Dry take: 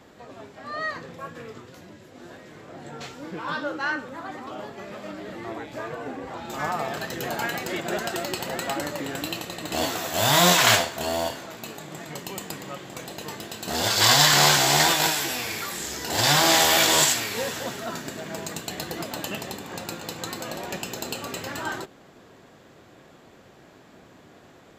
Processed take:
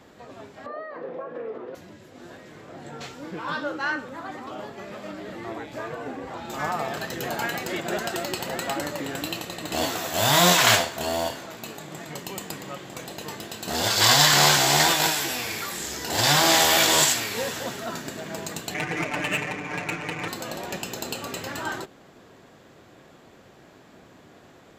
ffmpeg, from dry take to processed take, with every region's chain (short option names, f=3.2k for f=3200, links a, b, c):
-filter_complex "[0:a]asettb=1/sr,asplit=3[a][b][c];[a]atrim=end=0.664[d];[b]atrim=start=0.66:end=1.75,asetpts=PTS-STARTPTS,afade=t=in:d=0.004:c=qsin,afade=t=out:st=1.086:d=0.004:c=qsin,acompressor=threshold=-40dB:ratio=6:attack=3.2:release=140:knee=1:detection=peak,highpass=220,lowpass=2.3k,equalizer=f=510:w=0.73:g=14[e];[c]atrim=start=1.746[f];[d][e]acrossfade=d=0.004:c1=hsin:c2=qsin[g];[g][f]acrossfade=d=0.004:c1=qsin:c2=hsin,asettb=1/sr,asplit=3[h][i][j];[h]atrim=end=18.744[k];[i]atrim=start=18.74:end=20.28,asetpts=PTS-STARTPTS,afade=t=in:d=0.004:c=qsin,afade=t=out:st=1.536:d=0.004:c=qsin,lowpass=f=2.3k:t=q:w=6.1,adynamicsmooth=sensitivity=4.5:basefreq=810,aecho=1:1:6.7:0.98,atrim=end_sample=67914[l];[j]atrim=start=20.276[m];[k][l]acrossfade=d=0.004:c1=hsin:c2=qsin[n];[n][m]acrossfade=d=0.004:c1=qsin:c2=hsin"